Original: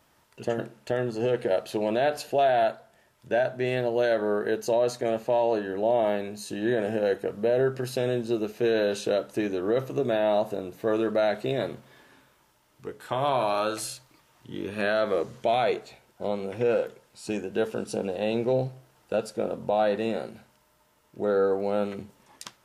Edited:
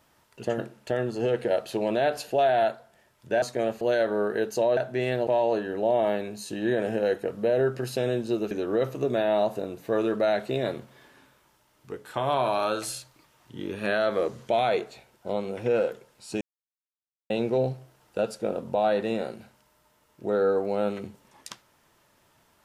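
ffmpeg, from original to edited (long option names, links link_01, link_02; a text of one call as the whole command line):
ffmpeg -i in.wav -filter_complex "[0:a]asplit=8[link_01][link_02][link_03][link_04][link_05][link_06][link_07][link_08];[link_01]atrim=end=3.422[link_09];[link_02]atrim=start=4.878:end=5.272[link_10];[link_03]atrim=start=3.918:end=4.882[link_11];[link_04]atrim=start=3.418:end=3.922[link_12];[link_05]atrim=start=5.268:end=8.512[link_13];[link_06]atrim=start=9.458:end=17.36,asetpts=PTS-STARTPTS,afade=type=out:start_time=7.898:duration=0.004:curve=hsin[link_14];[link_07]atrim=start=17.36:end=18.25,asetpts=PTS-STARTPTS,volume=0[link_15];[link_08]atrim=start=18.25,asetpts=PTS-STARTPTS,afade=type=in:duration=0.004:curve=hsin[link_16];[link_09][link_10]acrossfade=duration=0.004:curve1=hsin:curve2=hsin[link_17];[link_17][link_11]acrossfade=duration=0.004:curve1=hsin:curve2=hsin[link_18];[link_18][link_12]acrossfade=duration=0.004:curve1=hsin:curve2=hsin[link_19];[link_19][link_13]acrossfade=duration=0.004:curve1=hsin:curve2=hsin[link_20];[link_14][link_15][link_16]concat=n=3:v=0:a=1[link_21];[link_20][link_21]acrossfade=duration=0.004:curve1=hsin:curve2=hsin" out.wav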